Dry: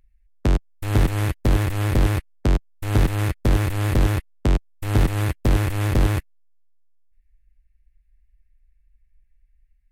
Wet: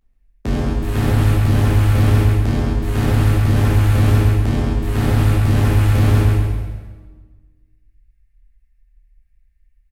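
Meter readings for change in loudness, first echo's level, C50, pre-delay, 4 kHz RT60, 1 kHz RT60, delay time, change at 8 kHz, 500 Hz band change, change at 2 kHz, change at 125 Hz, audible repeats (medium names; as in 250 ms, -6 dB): +6.0 dB, -3.5 dB, -3.0 dB, 11 ms, 1.2 s, 1.3 s, 135 ms, +2.5 dB, +4.0 dB, +3.5 dB, +8.0 dB, 1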